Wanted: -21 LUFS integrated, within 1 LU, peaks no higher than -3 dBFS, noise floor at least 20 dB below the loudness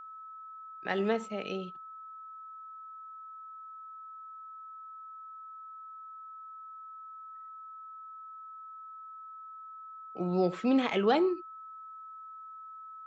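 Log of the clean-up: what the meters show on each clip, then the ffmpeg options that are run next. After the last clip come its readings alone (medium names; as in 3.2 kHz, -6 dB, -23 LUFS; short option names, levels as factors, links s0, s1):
steady tone 1.3 kHz; tone level -44 dBFS; loudness -37.0 LUFS; peak level -14.5 dBFS; loudness target -21.0 LUFS
-> -af "bandreject=f=1300:w=30"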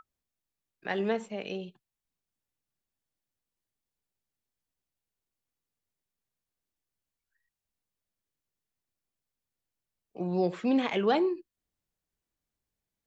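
steady tone not found; loudness -30.5 LUFS; peak level -14.5 dBFS; loudness target -21.0 LUFS
-> -af "volume=2.99"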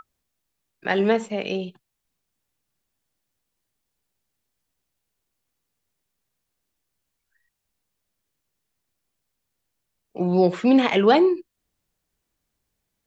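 loudness -20.5 LUFS; peak level -5.0 dBFS; noise floor -80 dBFS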